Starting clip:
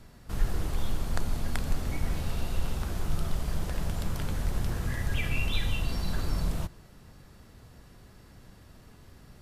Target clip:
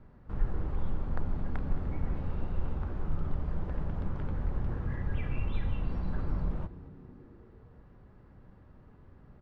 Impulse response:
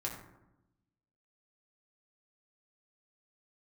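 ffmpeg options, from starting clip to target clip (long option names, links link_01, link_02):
-filter_complex "[0:a]lowpass=1300,bandreject=frequency=680:width=12,asplit=2[link_01][link_02];[link_02]asplit=5[link_03][link_04][link_05][link_06][link_07];[link_03]adelay=220,afreqshift=-96,volume=-18dB[link_08];[link_04]adelay=440,afreqshift=-192,volume=-22.9dB[link_09];[link_05]adelay=660,afreqshift=-288,volume=-27.8dB[link_10];[link_06]adelay=880,afreqshift=-384,volume=-32.6dB[link_11];[link_07]adelay=1100,afreqshift=-480,volume=-37.5dB[link_12];[link_08][link_09][link_10][link_11][link_12]amix=inputs=5:normalize=0[link_13];[link_01][link_13]amix=inputs=2:normalize=0,volume=-2.5dB"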